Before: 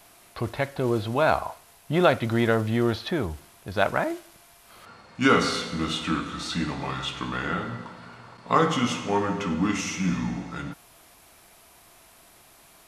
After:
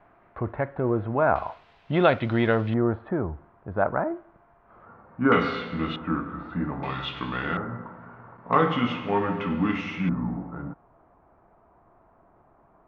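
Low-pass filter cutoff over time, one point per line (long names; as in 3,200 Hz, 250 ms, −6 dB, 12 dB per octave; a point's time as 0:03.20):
low-pass filter 24 dB per octave
1,700 Hz
from 0:01.36 3,500 Hz
from 0:02.74 1,400 Hz
from 0:05.32 2,900 Hz
from 0:05.96 1,500 Hz
from 0:06.83 3,600 Hz
from 0:07.57 1,600 Hz
from 0:08.53 3,000 Hz
from 0:10.09 1,200 Hz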